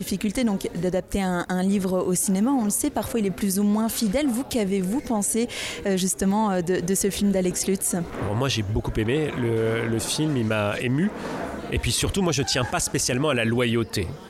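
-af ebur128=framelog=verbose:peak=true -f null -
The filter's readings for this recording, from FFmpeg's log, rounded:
Integrated loudness:
  I:         -23.8 LUFS
  Threshold: -33.8 LUFS
Loudness range:
  LRA:         1.2 LU
  Threshold: -43.8 LUFS
  LRA low:   -24.4 LUFS
  LRA high:  -23.2 LUFS
True peak:
  Peak:      -10.4 dBFS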